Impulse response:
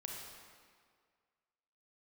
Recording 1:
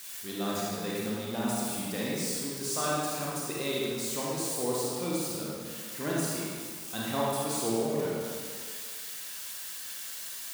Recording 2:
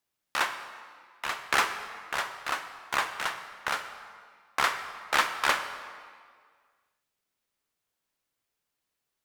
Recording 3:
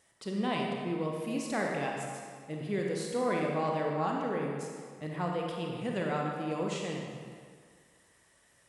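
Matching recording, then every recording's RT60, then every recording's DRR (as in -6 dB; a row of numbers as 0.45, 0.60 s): 3; 1.9, 1.9, 1.9 s; -6.0, 8.5, -1.0 dB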